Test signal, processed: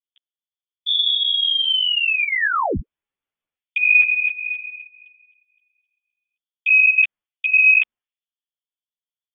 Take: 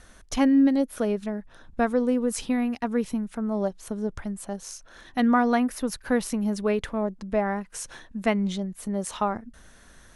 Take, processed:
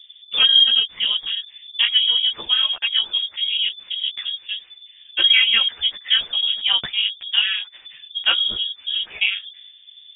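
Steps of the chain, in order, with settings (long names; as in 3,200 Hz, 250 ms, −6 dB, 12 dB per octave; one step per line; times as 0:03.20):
low-pass that shuts in the quiet parts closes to 420 Hz, open at −22.5 dBFS
voice inversion scrambler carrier 3,500 Hz
string-ensemble chorus
level +8 dB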